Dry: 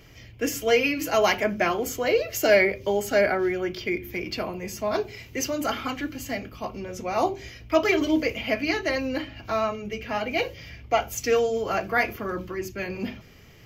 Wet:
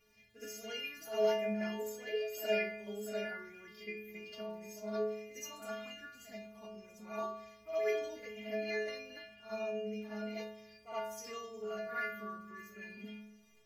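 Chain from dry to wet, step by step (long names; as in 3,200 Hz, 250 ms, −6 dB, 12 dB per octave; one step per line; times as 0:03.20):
surface crackle 130 per second −43 dBFS
stiff-string resonator 210 Hz, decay 0.84 s, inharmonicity 0.008
backwards echo 68 ms −10 dB
level +1 dB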